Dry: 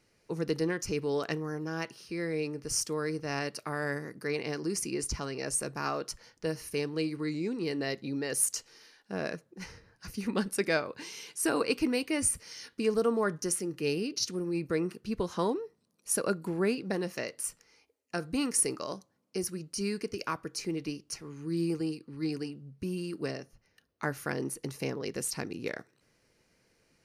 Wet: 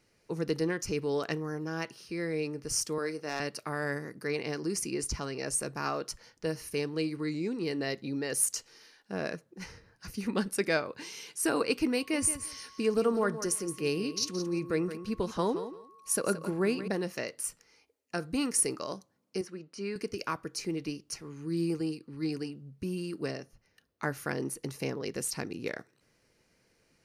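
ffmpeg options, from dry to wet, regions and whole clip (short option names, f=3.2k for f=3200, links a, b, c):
-filter_complex "[0:a]asettb=1/sr,asplit=3[a][b][c];[a]atrim=end=2.984[d];[b]atrim=start=2.98:end=3.4,asetpts=PTS-STARTPTS,afade=t=in:d=0.004:c=qsin,afade=t=out:st=0.416:d=0.004:c=qsin,highpass=270,volume=22.5dB,asoftclip=hard,volume=-22.5dB,asplit=2[e][f];[f]adelay=27,volume=-12dB[g];[e][g]amix=inputs=2:normalize=0,atrim=end_sample=18522[h];[c]atrim=start=3.396[i];[d][h]acrossfade=d=0.004:c1=hsin:c2=qsin[j];[j][i]acrossfade=d=0.004:c1=qsin:c2=hsin,asettb=1/sr,asplit=3[k][l][m];[k]atrim=end=11.964[n];[l]atrim=start=11.96:end=16.88,asetpts=PTS-STARTPTS,afade=t=in:d=0.004:c=qsin,afade=t=out:st=4.916:d=0.004:c=qsin,aeval=exprs='val(0)+0.00178*sin(2*PI*1100*n/s)':c=same,aecho=1:1:172|344:0.266|0.0426,atrim=end_sample=216972[o];[m]atrim=start=16.876[p];[n][o]acrossfade=d=0.004:c1=hsin:c2=qsin[q];[q][p]acrossfade=d=0.004:c1=qsin:c2=hsin,asettb=1/sr,asplit=3[r][s][t];[r]atrim=end=19.414[u];[s]atrim=start=19.41:end=19.96,asetpts=PTS-STARTPTS,afade=t=in:d=0.004:c=qsin,afade=t=out:st=0.546:d=0.004:c=qsin,highpass=150,lowpass=7.7k,bass=f=250:g=-7,treble=f=4k:g=-13[v];[t]atrim=start=19.956[w];[u][v]acrossfade=d=0.004:c1=hsin:c2=qsin[x];[x][w]acrossfade=d=0.004:c1=qsin:c2=hsin"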